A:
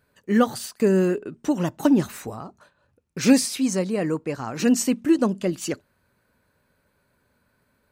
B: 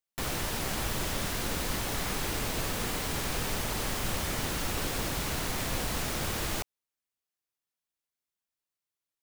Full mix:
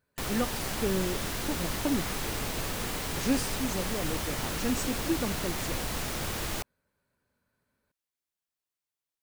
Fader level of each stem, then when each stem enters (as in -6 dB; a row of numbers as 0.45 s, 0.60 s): -11.5 dB, -1.0 dB; 0.00 s, 0.00 s